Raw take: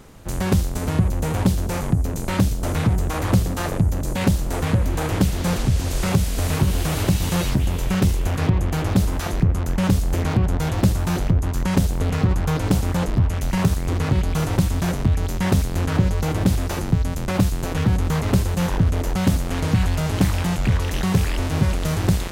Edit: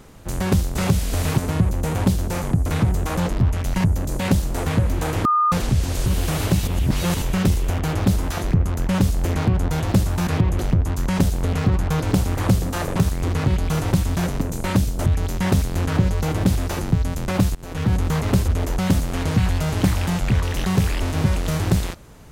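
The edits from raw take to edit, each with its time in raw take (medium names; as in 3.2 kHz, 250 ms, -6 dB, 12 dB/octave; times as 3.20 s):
2.05–2.70 s: move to 15.06 s
3.21–3.80 s: swap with 12.94–13.61 s
5.21–5.48 s: bleep 1.22 kHz -14.5 dBFS
6.02–6.63 s: move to 0.77 s
7.24–7.79 s: reverse
8.36–8.68 s: move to 11.16 s
17.55–17.93 s: fade in, from -22 dB
18.48–18.85 s: delete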